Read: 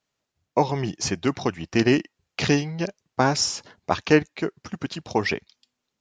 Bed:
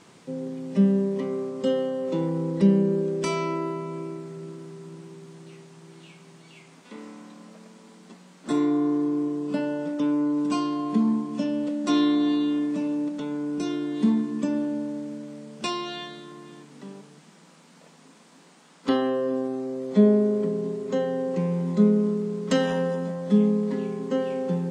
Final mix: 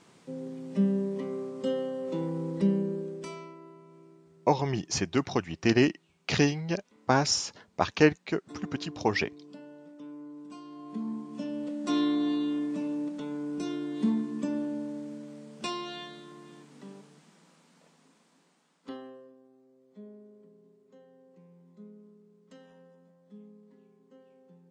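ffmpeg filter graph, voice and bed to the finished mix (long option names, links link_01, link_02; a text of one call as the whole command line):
ffmpeg -i stem1.wav -i stem2.wav -filter_complex "[0:a]adelay=3900,volume=-3.5dB[link_01];[1:a]volume=9dB,afade=type=out:start_time=2.56:duration=0.99:silence=0.188365,afade=type=in:start_time=10.63:duration=1.37:silence=0.177828,afade=type=out:start_time=16.92:duration=2.43:silence=0.0530884[link_02];[link_01][link_02]amix=inputs=2:normalize=0" out.wav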